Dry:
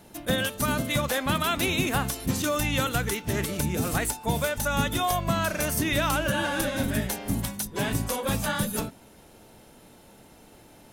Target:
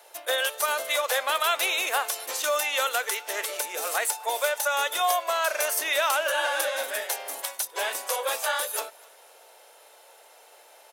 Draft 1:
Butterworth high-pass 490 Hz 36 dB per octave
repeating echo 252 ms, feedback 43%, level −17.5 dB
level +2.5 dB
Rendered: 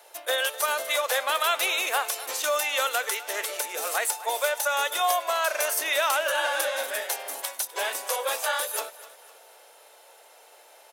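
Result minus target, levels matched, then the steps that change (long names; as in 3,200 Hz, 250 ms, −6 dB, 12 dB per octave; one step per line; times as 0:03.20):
echo-to-direct +8 dB
change: repeating echo 252 ms, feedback 43%, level −25.5 dB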